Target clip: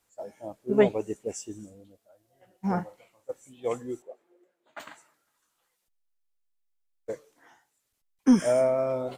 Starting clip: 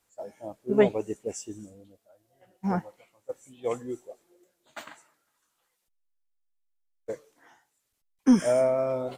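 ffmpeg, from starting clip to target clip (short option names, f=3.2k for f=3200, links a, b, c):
-filter_complex "[0:a]asettb=1/sr,asplit=3[a][b][c];[a]atrim=end=2.724[d];[b]atrim=start=2.72:end=3.31,asetpts=PTS-STARTPTS,afade=t=in:d=0.004:c=qsin,afade=t=out:st=0.586:d=0.004:c=qsin,asplit=2[e][f];[f]adelay=41,volume=-9dB[g];[e][g]amix=inputs=2:normalize=0,atrim=end_sample=26019[h];[c]atrim=start=3.306[i];[d][h]acrossfade=d=0.004:c1=hsin:c2=qsin[j];[j][i]acrossfade=d=0.004:c1=qsin:c2=hsin,asettb=1/sr,asplit=3[k][l][m];[k]atrim=end=4.024[n];[l]atrim=start=4.02:end=4.8,asetpts=PTS-STARTPTS,afade=t=in:d=0.004:c=qsin,afade=t=out:st=0.776:d=0.004:c=qsin,acrossover=split=230 2700:gain=0.2 1 0.178[o][p][q];[o][p][q]amix=inputs=3:normalize=0[r];[m]atrim=start=4.796[s];[n][r]acrossfade=d=0.004:c1=hsin:c2=qsin[t];[t][s]acrossfade=d=0.004:c1=qsin:c2=hsin"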